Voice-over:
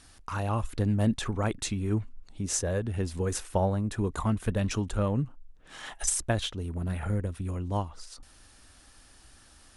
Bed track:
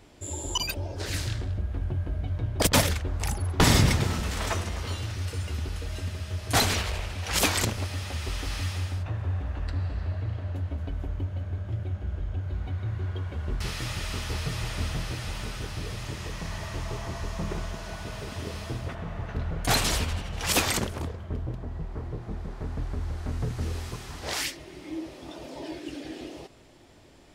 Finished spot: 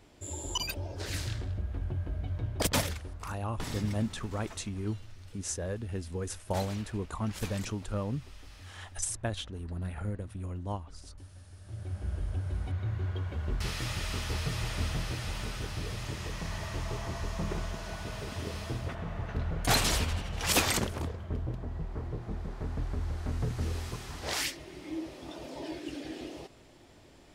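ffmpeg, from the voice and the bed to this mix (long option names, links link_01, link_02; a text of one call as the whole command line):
ffmpeg -i stem1.wav -i stem2.wav -filter_complex "[0:a]adelay=2950,volume=-6dB[link_01];[1:a]volume=12.5dB,afade=type=out:start_time=2.46:duration=0.9:silence=0.188365,afade=type=in:start_time=11.6:duration=0.5:silence=0.141254[link_02];[link_01][link_02]amix=inputs=2:normalize=0" out.wav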